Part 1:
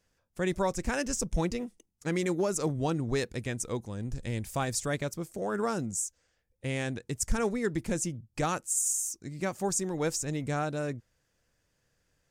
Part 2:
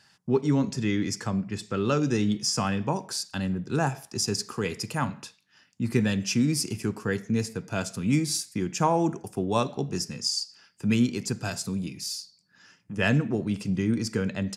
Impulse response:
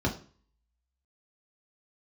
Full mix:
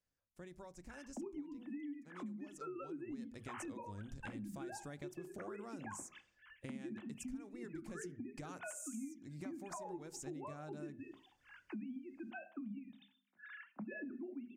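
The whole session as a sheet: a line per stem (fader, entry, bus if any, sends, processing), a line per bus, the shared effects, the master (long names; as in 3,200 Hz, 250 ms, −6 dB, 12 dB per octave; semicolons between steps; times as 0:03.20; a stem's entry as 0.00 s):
0:02.62 −18.5 dB → 0:03.34 −8 dB, 0.00 s, send −23.5 dB, downward compressor 6 to 1, threshold −32 dBFS, peak gain reduction 10.5 dB
−14.5 dB, 0.90 s, send −15.5 dB, three sine waves on the formant tracks; notch filter 420 Hz, Q 12; multiband upward and downward compressor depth 70%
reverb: on, RT60 0.40 s, pre-delay 3 ms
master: downward compressor 6 to 1, threshold −44 dBFS, peak gain reduction 18.5 dB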